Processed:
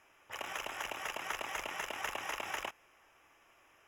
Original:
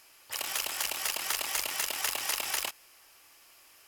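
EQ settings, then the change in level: boxcar filter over 10 samples; 0.0 dB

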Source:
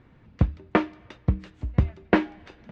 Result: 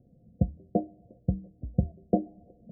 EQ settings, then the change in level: rippled Chebyshev low-pass 730 Hz, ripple 9 dB; 0.0 dB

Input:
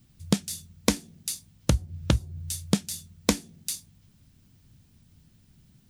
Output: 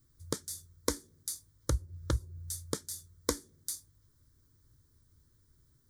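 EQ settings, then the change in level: static phaser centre 720 Hz, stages 6; -4.5 dB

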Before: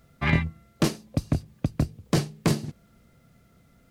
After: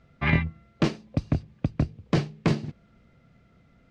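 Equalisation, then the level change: distance through air 150 m; peaking EQ 2.4 kHz +3 dB 0.81 oct; 0.0 dB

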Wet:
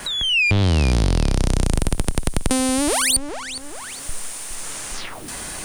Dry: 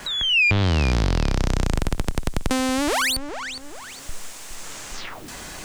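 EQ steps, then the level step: dynamic bell 1.5 kHz, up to -6 dB, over -37 dBFS, Q 0.81; peaking EQ 9.3 kHz +15 dB 0.2 oct; +3.0 dB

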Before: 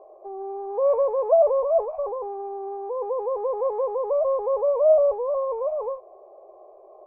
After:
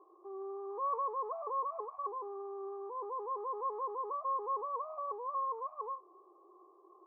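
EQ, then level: two resonant band-passes 610 Hz, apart 1.8 oct; +2.5 dB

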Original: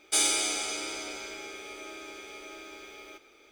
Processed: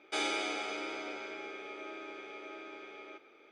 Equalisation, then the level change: band-pass 190–2400 Hz; 0.0 dB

